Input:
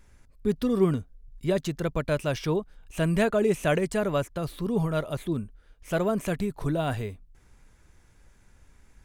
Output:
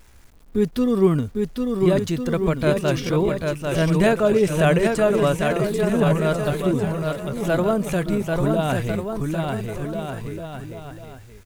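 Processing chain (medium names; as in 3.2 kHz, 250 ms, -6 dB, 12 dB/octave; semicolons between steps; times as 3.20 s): bouncing-ball echo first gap 630 ms, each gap 0.75×, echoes 5; tempo 0.79×; bit crusher 10-bit; trim +5 dB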